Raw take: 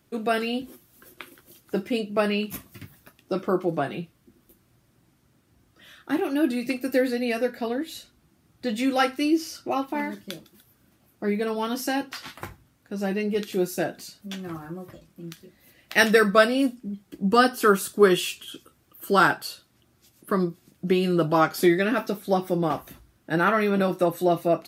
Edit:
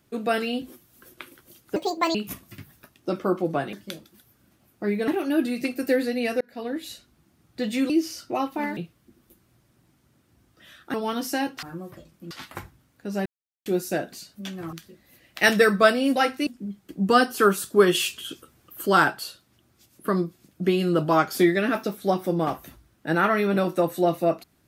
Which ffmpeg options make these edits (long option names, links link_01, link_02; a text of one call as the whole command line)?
ffmpeg -i in.wav -filter_complex "[0:a]asplit=18[link_01][link_02][link_03][link_04][link_05][link_06][link_07][link_08][link_09][link_10][link_11][link_12][link_13][link_14][link_15][link_16][link_17][link_18];[link_01]atrim=end=1.764[link_19];[link_02]atrim=start=1.76:end=2.38,asetpts=PTS-STARTPTS,asetrate=70560,aresample=44100[link_20];[link_03]atrim=start=2.376:end=3.962[link_21];[link_04]atrim=start=10.128:end=11.482[link_22];[link_05]atrim=start=6.128:end=7.46,asetpts=PTS-STARTPTS,afade=type=out:start_time=1.328:duration=0.004:curve=hsin[link_23];[link_06]atrim=start=7.46:end=8.952,asetpts=PTS-STARTPTS,afade=type=in:duration=0.38[link_24];[link_07]atrim=start=9.258:end=10.132[link_25];[link_08]atrim=start=3.958:end=6.132[link_26];[link_09]atrim=start=11.478:end=12.172[link_27];[link_10]atrim=start=14.588:end=15.272[link_28];[link_11]atrim=start=12.168:end=13.12,asetpts=PTS-STARTPTS,afade=type=out:start_time=0.948:duration=0.004:curve=hsin[link_29];[link_12]atrim=start=13.12:end=13.52,asetpts=PTS-STARTPTS,volume=0[link_30];[link_13]atrim=start=13.52:end=14.592,asetpts=PTS-STARTPTS,afade=type=in:duration=0.004:curve=hsin[link_31];[link_14]atrim=start=15.268:end=16.702[link_32];[link_15]atrim=start=8.948:end=9.262[link_33];[link_16]atrim=start=16.698:end=18.182[link_34];[link_17]atrim=start=18.178:end=19.092,asetpts=PTS-STARTPTS,volume=4dB[link_35];[link_18]atrim=start=19.088[link_36];[link_19][link_20]acrossfade=duration=0.004:curve1=hsin:curve2=hsin[link_37];[link_37][link_21]acrossfade=duration=0.004:curve1=hsin:curve2=hsin[link_38];[link_38][link_22]acrossfade=duration=0.004:curve1=hsin:curve2=hsin[link_39];[link_23][link_24]concat=n=2:v=0:a=1[link_40];[link_39][link_40]acrossfade=duration=0.004:curve1=hsin:curve2=hsin[link_41];[link_41][link_25]acrossfade=duration=0.004:curve1=hsin:curve2=hsin[link_42];[link_42][link_26]acrossfade=duration=0.004:curve1=hsin:curve2=hsin[link_43];[link_43][link_27]acrossfade=duration=0.004:curve1=hsin:curve2=hsin[link_44];[link_44][link_28]acrossfade=duration=0.004:curve1=hsin:curve2=hsin[link_45];[link_29][link_30][link_31]concat=n=3:v=0:a=1[link_46];[link_45][link_46]acrossfade=duration=0.004:curve1=hsin:curve2=hsin[link_47];[link_47][link_32]acrossfade=duration=0.004:curve1=hsin:curve2=hsin[link_48];[link_48][link_33]acrossfade=duration=0.004:curve1=hsin:curve2=hsin[link_49];[link_49][link_34]acrossfade=duration=0.004:curve1=hsin:curve2=hsin[link_50];[link_50][link_35]acrossfade=duration=0.004:curve1=hsin:curve2=hsin[link_51];[link_51][link_36]acrossfade=duration=0.004:curve1=hsin:curve2=hsin" out.wav